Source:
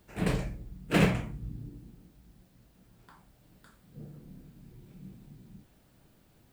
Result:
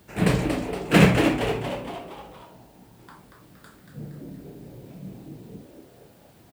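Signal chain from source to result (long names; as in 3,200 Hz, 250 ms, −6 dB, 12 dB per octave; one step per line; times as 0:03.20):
high-pass filter 68 Hz
echo with shifted repeats 233 ms, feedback 51%, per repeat +130 Hz, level −6.5 dB
level +8.5 dB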